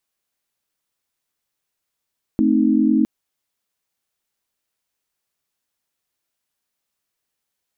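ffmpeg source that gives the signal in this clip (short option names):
-f lavfi -i "aevalsrc='0.133*(sin(2*PI*220*t)+sin(2*PI*261.63*t)+sin(2*PI*311.13*t))':d=0.66:s=44100"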